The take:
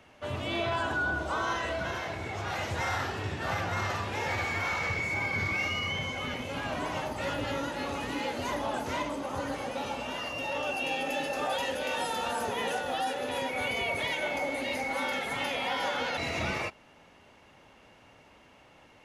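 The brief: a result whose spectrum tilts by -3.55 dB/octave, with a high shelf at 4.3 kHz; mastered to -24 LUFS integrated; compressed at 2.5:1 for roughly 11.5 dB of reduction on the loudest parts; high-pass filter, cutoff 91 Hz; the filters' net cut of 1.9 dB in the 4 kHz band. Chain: high-pass 91 Hz; peaking EQ 4 kHz -6.5 dB; treble shelf 4.3 kHz +7 dB; compression 2.5:1, threshold -46 dBFS; trim +18.5 dB

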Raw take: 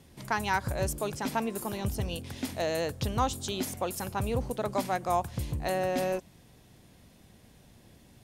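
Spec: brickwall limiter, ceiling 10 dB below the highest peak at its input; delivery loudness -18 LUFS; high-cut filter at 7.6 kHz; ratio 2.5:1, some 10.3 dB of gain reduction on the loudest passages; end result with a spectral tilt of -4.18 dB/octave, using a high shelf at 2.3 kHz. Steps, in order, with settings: low-pass 7.6 kHz; treble shelf 2.3 kHz +6 dB; compression 2.5:1, threshold -38 dBFS; trim +23.5 dB; peak limiter -8 dBFS

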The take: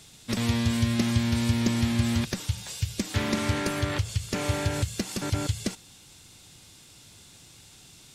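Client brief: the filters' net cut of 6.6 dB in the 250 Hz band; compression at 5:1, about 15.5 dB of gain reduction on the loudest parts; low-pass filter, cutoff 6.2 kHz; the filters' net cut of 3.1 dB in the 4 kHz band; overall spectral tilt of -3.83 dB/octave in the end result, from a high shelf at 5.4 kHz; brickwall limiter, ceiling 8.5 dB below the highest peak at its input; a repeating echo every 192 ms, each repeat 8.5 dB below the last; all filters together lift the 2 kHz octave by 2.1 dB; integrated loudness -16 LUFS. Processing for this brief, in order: low-pass 6.2 kHz; peaking EQ 250 Hz -7.5 dB; peaking EQ 2 kHz +3.5 dB; peaking EQ 4 kHz -7 dB; treble shelf 5.4 kHz +6.5 dB; compression 5:1, threshold -40 dBFS; peak limiter -35 dBFS; feedback delay 192 ms, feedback 38%, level -8.5 dB; trim +30 dB

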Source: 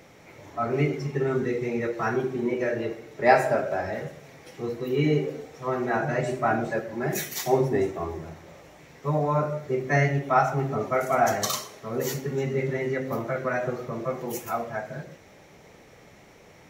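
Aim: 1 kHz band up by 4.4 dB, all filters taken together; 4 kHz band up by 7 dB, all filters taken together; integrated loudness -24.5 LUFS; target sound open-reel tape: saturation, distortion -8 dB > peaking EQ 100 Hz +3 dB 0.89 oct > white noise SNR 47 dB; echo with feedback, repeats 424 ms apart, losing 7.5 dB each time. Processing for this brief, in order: peaking EQ 1 kHz +6 dB; peaking EQ 4 kHz +8.5 dB; feedback delay 424 ms, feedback 42%, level -7.5 dB; saturation -21.5 dBFS; peaking EQ 100 Hz +3 dB 0.89 oct; white noise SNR 47 dB; trim +3 dB

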